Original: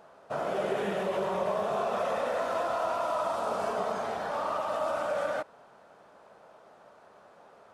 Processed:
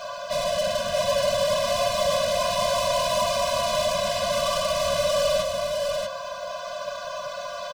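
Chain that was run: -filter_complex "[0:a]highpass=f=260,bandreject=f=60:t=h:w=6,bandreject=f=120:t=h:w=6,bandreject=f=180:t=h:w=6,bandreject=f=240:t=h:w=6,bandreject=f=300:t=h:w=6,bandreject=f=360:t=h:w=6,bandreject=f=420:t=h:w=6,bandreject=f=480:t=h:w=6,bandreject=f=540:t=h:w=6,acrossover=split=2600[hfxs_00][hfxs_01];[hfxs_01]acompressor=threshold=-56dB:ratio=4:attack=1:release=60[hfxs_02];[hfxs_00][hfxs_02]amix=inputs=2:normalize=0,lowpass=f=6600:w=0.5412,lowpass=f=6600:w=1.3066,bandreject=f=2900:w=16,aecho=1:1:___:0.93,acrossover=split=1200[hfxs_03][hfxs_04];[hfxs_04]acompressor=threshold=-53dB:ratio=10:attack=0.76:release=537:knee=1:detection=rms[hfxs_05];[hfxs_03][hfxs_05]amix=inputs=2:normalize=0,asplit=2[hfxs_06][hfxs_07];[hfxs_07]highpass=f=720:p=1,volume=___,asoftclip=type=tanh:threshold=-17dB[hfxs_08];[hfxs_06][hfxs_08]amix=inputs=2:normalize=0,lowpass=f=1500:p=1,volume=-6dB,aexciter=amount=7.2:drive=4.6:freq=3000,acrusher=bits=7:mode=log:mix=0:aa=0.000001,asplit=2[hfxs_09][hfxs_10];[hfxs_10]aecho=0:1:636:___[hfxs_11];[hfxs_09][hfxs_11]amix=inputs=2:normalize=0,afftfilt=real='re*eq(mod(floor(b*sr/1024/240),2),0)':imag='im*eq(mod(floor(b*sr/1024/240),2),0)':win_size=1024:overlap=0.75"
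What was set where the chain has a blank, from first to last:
6.9, 33dB, 0.631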